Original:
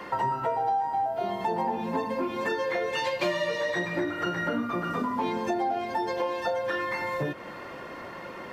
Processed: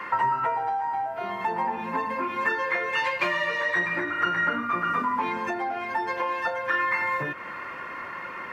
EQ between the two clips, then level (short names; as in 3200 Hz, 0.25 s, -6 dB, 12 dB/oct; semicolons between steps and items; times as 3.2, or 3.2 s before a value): band shelf 1600 Hz +11.5 dB; -4.0 dB